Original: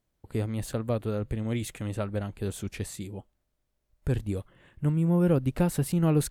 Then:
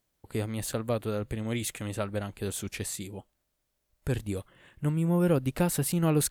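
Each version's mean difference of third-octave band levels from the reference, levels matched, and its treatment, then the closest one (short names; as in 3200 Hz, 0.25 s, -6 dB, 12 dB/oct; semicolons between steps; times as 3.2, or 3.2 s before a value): 3.5 dB: tilt +1.5 dB/oct; gain +1.5 dB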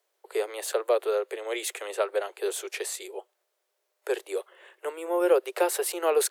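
12.5 dB: steep high-pass 370 Hz 96 dB/oct; gain +7.5 dB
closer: first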